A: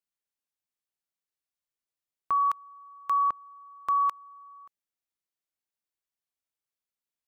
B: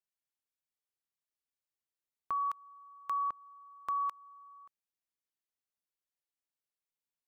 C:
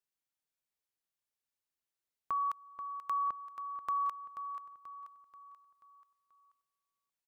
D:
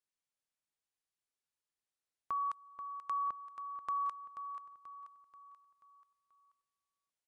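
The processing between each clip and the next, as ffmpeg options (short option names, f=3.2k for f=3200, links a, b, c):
-af "acompressor=threshold=-31dB:ratio=1.5,volume=-5.5dB"
-af "aecho=1:1:484|968|1452|1936|2420:0.299|0.14|0.0659|0.031|0.0146"
-af "volume=-2dB" -ar 24000 -c:a libmp3lame -b:a 112k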